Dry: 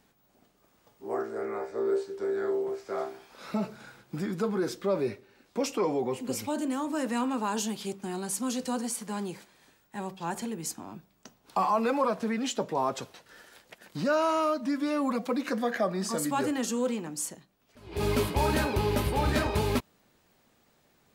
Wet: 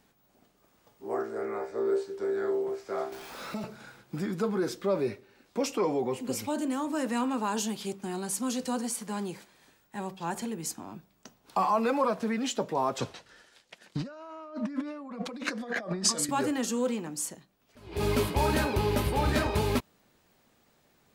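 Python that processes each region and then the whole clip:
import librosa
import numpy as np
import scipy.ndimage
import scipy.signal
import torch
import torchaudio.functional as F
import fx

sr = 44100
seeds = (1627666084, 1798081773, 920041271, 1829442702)

y = fx.chain(x, sr, fx.zero_step(step_db=-44.5),
    fx.band_squash(depth_pct=70), at=(3.12, 3.64))
y = fx.chain(y, sr, fx.lowpass(hz=7800.0, slope=12),
    fx.over_compress(threshold_db=-36.0, ratio=-1.0),
    fx.band_widen(depth_pct=100), at=(12.99, 16.29))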